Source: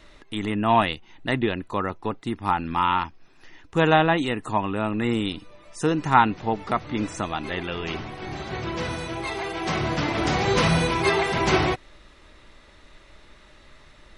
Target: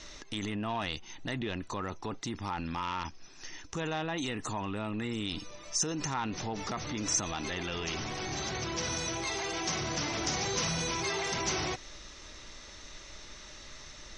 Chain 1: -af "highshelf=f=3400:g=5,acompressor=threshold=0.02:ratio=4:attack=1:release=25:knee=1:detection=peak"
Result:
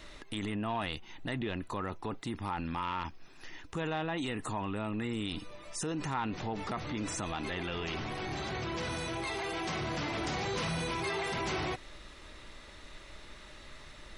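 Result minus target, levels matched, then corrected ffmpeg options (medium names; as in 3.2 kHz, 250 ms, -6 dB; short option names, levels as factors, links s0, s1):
8 kHz band -9.5 dB
-af "highshelf=f=3400:g=5,acompressor=threshold=0.02:ratio=4:attack=1:release=25:knee=1:detection=peak,lowpass=f=6000:t=q:w=6.2"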